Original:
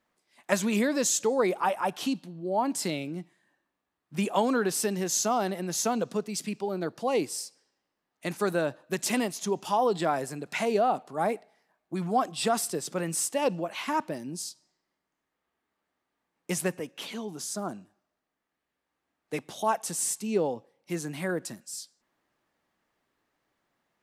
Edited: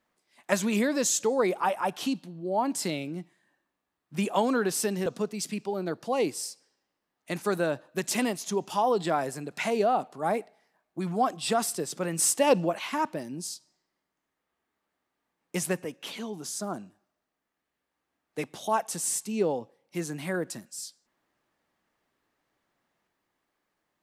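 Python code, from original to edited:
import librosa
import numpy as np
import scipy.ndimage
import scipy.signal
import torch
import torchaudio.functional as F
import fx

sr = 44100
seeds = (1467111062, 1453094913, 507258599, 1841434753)

y = fx.edit(x, sr, fx.cut(start_s=5.06, length_s=0.95),
    fx.clip_gain(start_s=13.14, length_s=0.6, db=5.0), tone=tone)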